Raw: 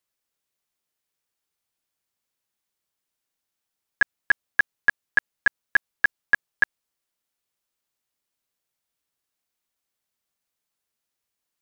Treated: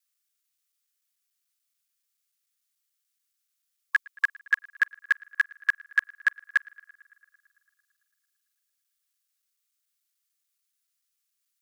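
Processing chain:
reversed piece by piece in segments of 145 ms
linear-phase brick-wall high-pass 1,100 Hz
high-shelf EQ 2,900 Hz +11 dB
on a send: feedback echo with a low-pass in the loop 112 ms, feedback 81%, low-pass 3,500 Hz, level −24 dB
on the sum: level −6 dB

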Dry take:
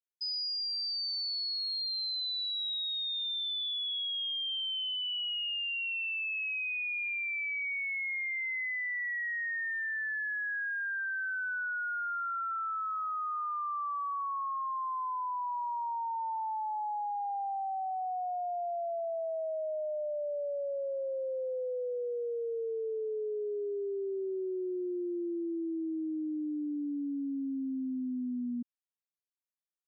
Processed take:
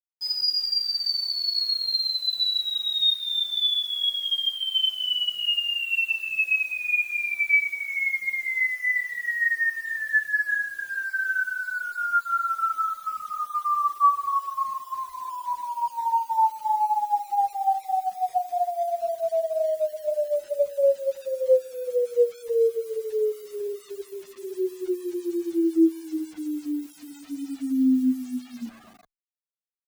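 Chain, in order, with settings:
four-comb reverb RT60 1.3 s, combs from 27 ms, DRR −7 dB
bit reduction 8 bits
reverb reduction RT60 1.1 s
barber-pole flanger 10.1 ms −0.77 Hz
level +6 dB

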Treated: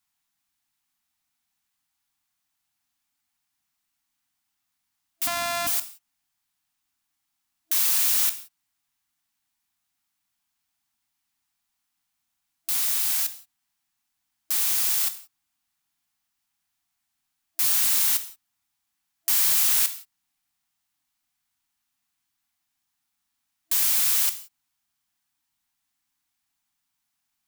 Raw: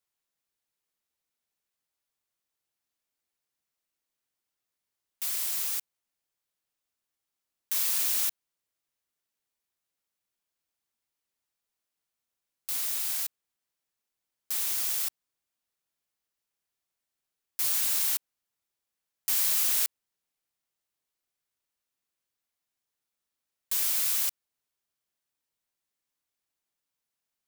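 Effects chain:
0:05.27–0:05.67: samples sorted by size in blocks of 128 samples
reverb whose tail is shaped and stops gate 200 ms falling, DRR 10.5 dB
soft clipping −21 dBFS, distortion −17 dB
brick-wall band-stop 320–670 Hz
level +7 dB

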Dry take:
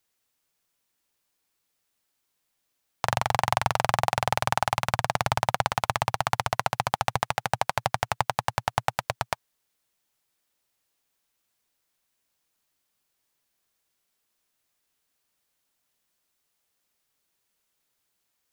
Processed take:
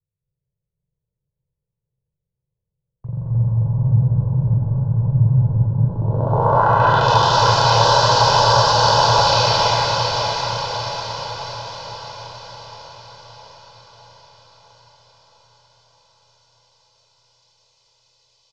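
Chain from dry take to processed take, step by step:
peak hold with a decay on every bin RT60 1.08 s
Butterworth low-pass 7,400 Hz 36 dB per octave
low-shelf EQ 68 Hz −7 dB
comb filter 2 ms, depth 79%
in parallel at −1 dB: downward compressor 6 to 1, threshold −31 dBFS, peak gain reduction 16 dB
on the sum: wave folding −7 dBFS
phaser swept by the level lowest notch 260 Hz, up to 2,200 Hz, full sweep at −17 dBFS
low-pass filter sweep 160 Hz → 5,000 Hz, 0:05.77–0:07.11
on a send: feedback delay with all-pass diffusion 595 ms, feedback 61%, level −4 dB
on the sum: reverb whose tail is shaped and stops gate 330 ms rising, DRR −6 dB
level −1.5 dB

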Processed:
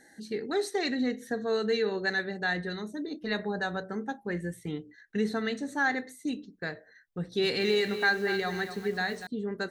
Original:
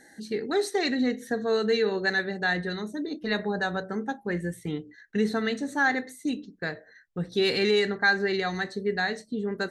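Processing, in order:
0:07.19–0:09.27: feedback echo at a low word length 241 ms, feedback 35%, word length 7 bits, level −9 dB
level −3.5 dB

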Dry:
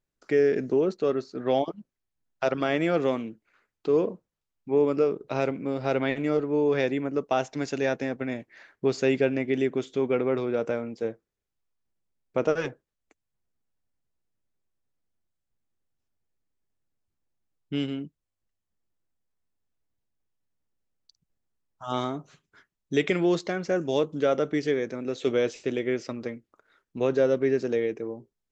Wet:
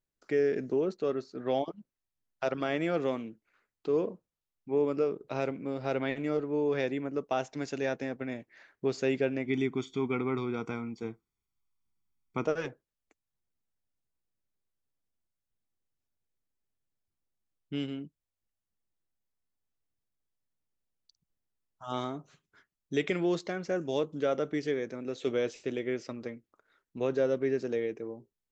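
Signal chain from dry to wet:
0:09.46–0:12.46: comb filter 0.9 ms, depth 94%
level −5.5 dB

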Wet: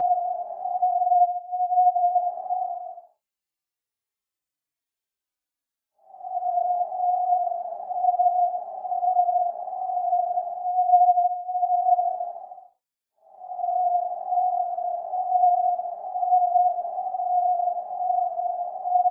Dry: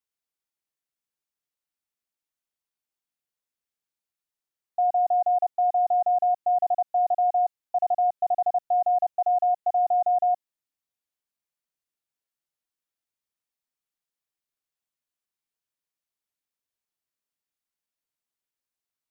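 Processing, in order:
extreme stretch with random phases 15×, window 0.10 s, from 0:07.30
barber-pole flanger 3.6 ms −1.1 Hz
level +3.5 dB

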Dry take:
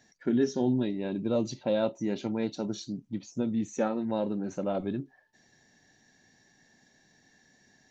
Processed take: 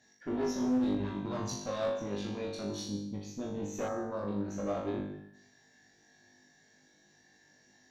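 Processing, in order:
in parallel at +1 dB: brickwall limiter −26 dBFS, peak gain reduction 10 dB
on the sum: mains-hum notches 50/100/150/200 Hz
on a send at −12 dB: convolution reverb RT60 0.55 s, pre-delay 111 ms
on the sum: tube saturation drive 23 dB, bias 0.65
0:00.93–0:01.65: thirty-one-band graphic EQ 125 Hz +11 dB, 500 Hz −10 dB, 1,000 Hz +9 dB, 6,300 Hz +6 dB
flutter between parallel walls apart 3.4 metres, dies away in 0.62 s
asymmetric clip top −20 dBFS
0:03.88–0:04.28: flat-topped bell 3,000 Hz −12.5 dB 1.1 octaves
level −8 dB

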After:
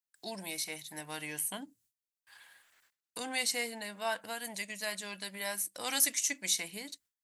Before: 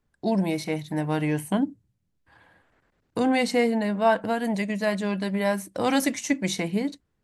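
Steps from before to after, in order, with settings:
noise gate with hold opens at −56 dBFS
first-order pre-emphasis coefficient 0.97
one half of a high-frequency compander encoder only
level +4.5 dB

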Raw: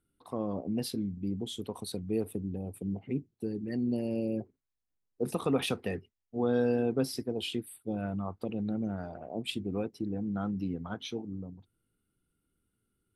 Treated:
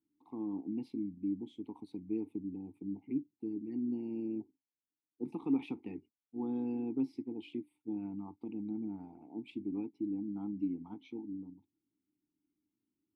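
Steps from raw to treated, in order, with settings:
formant filter u
low-shelf EQ 410 Hz +8 dB

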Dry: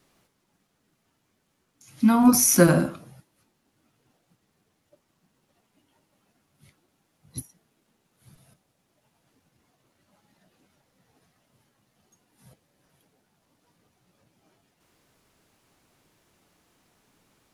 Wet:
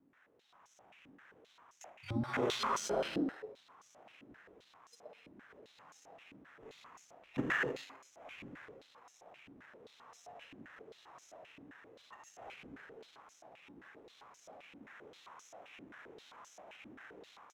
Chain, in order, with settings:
automatic gain control gain up to 15 dB
on a send: echo with shifted repeats 122 ms, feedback 37%, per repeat +130 Hz, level −10 dB
on the sum: reverb whose tail is shaped and stops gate 340 ms flat, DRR 2 dB
reversed playback
downward compressor 10 to 1, threshold −22 dBFS, peak gain reduction 19.5 dB
reversed playback
frequency shifter −120 Hz
sample-rate reduction 4,600 Hz, jitter 0%
band-pass on a step sequencer 7.6 Hz 280–6,200 Hz
level +5 dB

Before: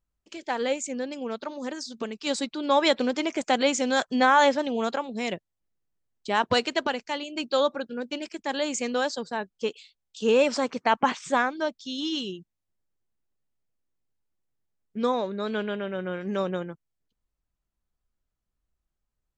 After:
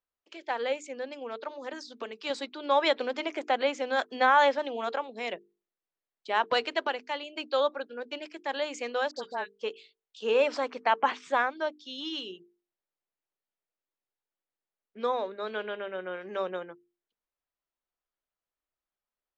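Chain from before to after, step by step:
0:03.39–0:03.99: high-shelf EQ 3,800 Hz −7.5 dB
0:09.11–0:09.51: all-pass dispersion highs, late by 56 ms, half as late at 1,400 Hz
three-way crossover with the lows and the highs turned down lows −20 dB, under 330 Hz, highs −16 dB, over 4,400 Hz
mains-hum notches 50/100/150/200/250/300/350/400/450 Hz
0:01.73–0:02.30: multiband upward and downward compressor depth 40%
level −2 dB

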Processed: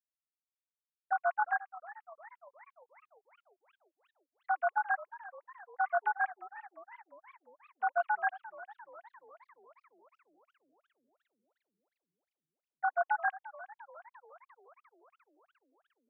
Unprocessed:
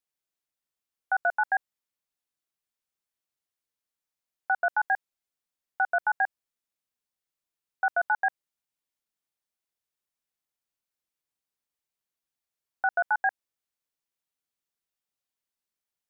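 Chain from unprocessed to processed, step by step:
three sine waves on the formant tracks
hollow resonant body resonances 300/1,100 Hz, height 7 dB
feedback echo with a swinging delay time 353 ms, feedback 60%, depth 210 cents, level −17 dB
level −5 dB

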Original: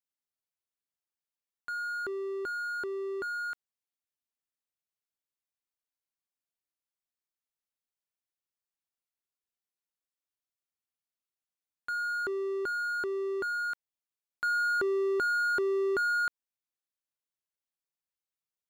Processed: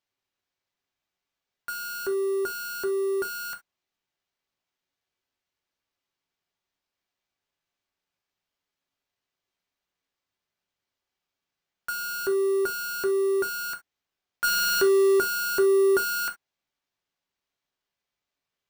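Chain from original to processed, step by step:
0:14.44–0:15.20: high-shelf EQ 2,300 Hz +10 dB
sample-rate reduction 10,000 Hz, jitter 0%
convolution reverb, pre-delay 3 ms, DRR 4.5 dB
level +4.5 dB

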